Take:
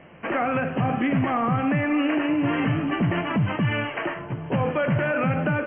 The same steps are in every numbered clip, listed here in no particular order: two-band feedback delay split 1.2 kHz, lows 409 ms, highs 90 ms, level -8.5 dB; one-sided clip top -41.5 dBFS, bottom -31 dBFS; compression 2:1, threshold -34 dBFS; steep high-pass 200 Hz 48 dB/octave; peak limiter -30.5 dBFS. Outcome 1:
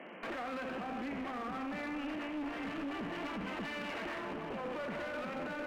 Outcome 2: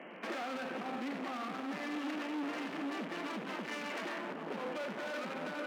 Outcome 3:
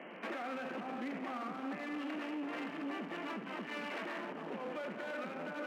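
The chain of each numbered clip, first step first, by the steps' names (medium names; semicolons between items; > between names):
steep high-pass > peak limiter > two-band feedback delay > one-sided clip > compression; compression > two-band feedback delay > one-sided clip > steep high-pass > peak limiter; compression > two-band feedback delay > peak limiter > one-sided clip > steep high-pass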